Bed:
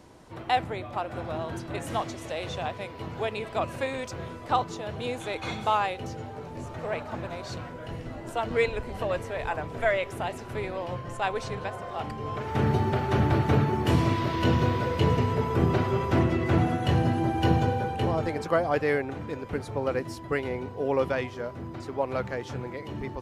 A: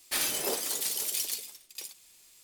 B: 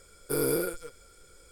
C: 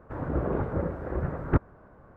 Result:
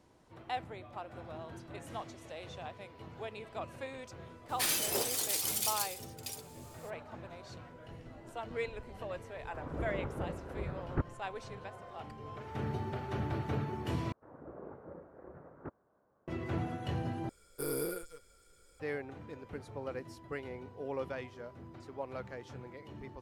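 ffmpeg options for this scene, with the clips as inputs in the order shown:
-filter_complex "[3:a]asplit=2[s0][s1];[0:a]volume=0.237[s2];[s1]bandpass=f=610:t=q:w=0.55:csg=0[s3];[s2]asplit=3[s4][s5][s6];[s4]atrim=end=14.124[s7];[s3]atrim=end=2.16,asetpts=PTS-STARTPTS,volume=0.141[s8];[s5]atrim=start=16.276:end=17.294[s9];[2:a]atrim=end=1.51,asetpts=PTS-STARTPTS,volume=0.376[s10];[s6]atrim=start=18.796[s11];[1:a]atrim=end=2.43,asetpts=PTS-STARTPTS,volume=0.794,afade=t=in:d=0.02,afade=t=out:st=2.41:d=0.02,adelay=4480[s12];[s0]atrim=end=2.16,asetpts=PTS-STARTPTS,volume=0.316,afade=t=in:d=0.004:c=hsin,afade=t=out:st=2.156:d=0.004:c=hsin,adelay=9440[s13];[s7][s8]acrossfade=d=0.004:c1=hsin:c2=hsin[s14];[s14][s9]acrossfade=d=0.004:c1=hsin:c2=hsin[s15];[s15][s10]acrossfade=d=0.004:c1=hsin:c2=hsin[s16];[s16][s11]acrossfade=d=0.004:c1=hsin:c2=hsin[s17];[s17][s12][s13]amix=inputs=3:normalize=0"

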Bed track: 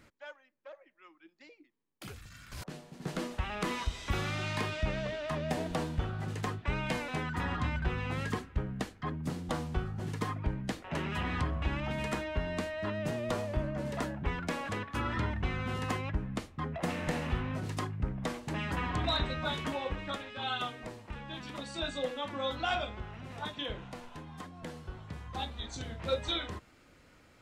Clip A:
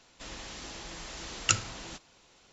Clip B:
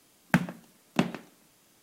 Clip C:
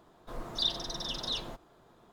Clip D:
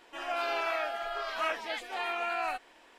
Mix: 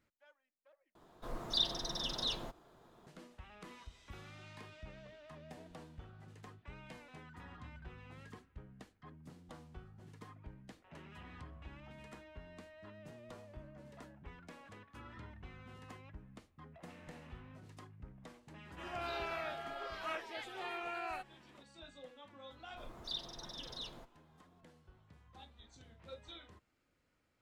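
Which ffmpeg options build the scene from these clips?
-filter_complex "[3:a]asplit=2[s0][s1];[0:a]volume=0.112[s2];[4:a]equalizer=f=370:t=o:w=0.26:g=13[s3];[s2]asplit=2[s4][s5];[s4]atrim=end=0.954[s6];[s0]atrim=end=2.12,asetpts=PTS-STARTPTS,volume=0.75[s7];[s5]atrim=start=3.066[s8];[s3]atrim=end=2.98,asetpts=PTS-STARTPTS,volume=0.335,afade=t=in:d=0.004:c=hsin,afade=t=out:st=2.976:d=0.004:c=hsin,adelay=18650[s9];[s1]atrim=end=2.12,asetpts=PTS-STARTPTS,volume=0.266,afade=t=in:d=0.004:c=hsin,afade=t=out:st=2.116:d=0.004:c=hsin,adelay=22490[s10];[s6][s7]acrossfade=d=0.004:c1=hsin:c2=hsin[s11];[s11][s8]acrossfade=d=0.004:c1=hsin:c2=hsin[s12];[s12][s9][s10]amix=inputs=3:normalize=0"

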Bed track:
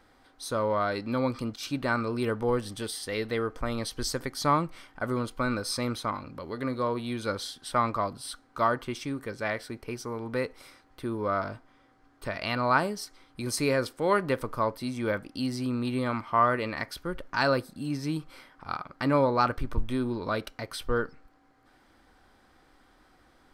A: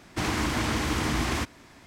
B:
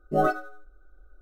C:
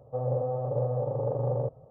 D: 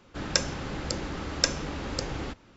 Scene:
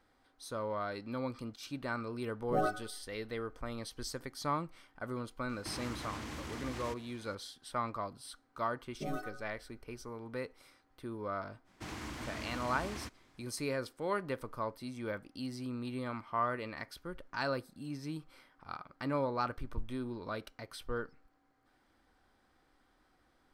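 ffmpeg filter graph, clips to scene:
-filter_complex "[2:a]asplit=2[s0][s1];[1:a]asplit=2[s2][s3];[0:a]volume=0.316[s4];[s2]acompressor=threshold=0.0251:ratio=6:attack=3.2:release=140:knee=1:detection=peak[s5];[s1]acrossover=split=140|3000[s6][s7][s8];[s7]acompressor=threshold=0.0282:ratio=6:attack=3.2:release=140:knee=2.83:detection=peak[s9];[s6][s9][s8]amix=inputs=3:normalize=0[s10];[s0]atrim=end=1.21,asetpts=PTS-STARTPTS,volume=0.355,afade=t=in:d=0.004:c=hsin,afade=t=out:st=1.206:d=0.004:c=hsin,adelay=2390[s11];[s5]atrim=end=1.86,asetpts=PTS-STARTPTS,volume=0.398,afade=t=in:d=0.004:c=hsin,afade=t=out:st=1.856:d=0.004:c=hsin,adelay=242109S[s12];[s10]atrim=end=1.21,asetpts=PTS-STARTPTS,volume=0.447,afade=t=in:d=0.004:c=hsin,afade=t=out:st=1.206:d=0.004:c=hsin,adelay=8890[s13];[s3]atrim=end=1.86,asetpts=PTS-STARTPTS,volume=0.158,afade=t=in:d=0.05,afade=t=out:st=1.81:d=0.05,adelay=11640[s14];[s4][s11][s12][s13][s14]amix=inputs=5:normalize=0"

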